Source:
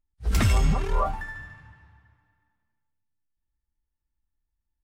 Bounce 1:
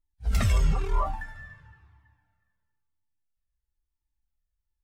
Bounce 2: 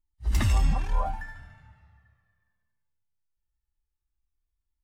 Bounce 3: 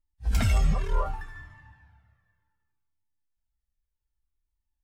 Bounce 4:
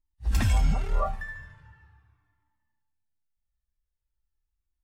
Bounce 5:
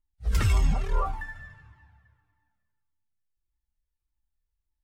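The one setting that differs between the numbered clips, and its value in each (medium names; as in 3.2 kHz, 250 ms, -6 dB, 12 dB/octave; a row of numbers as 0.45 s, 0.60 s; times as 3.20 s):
Shepard-style flanger, rate: 1 Hz, 0.2 Hz, 0.66 Hz, 0.4 Hz, 1.7 Hz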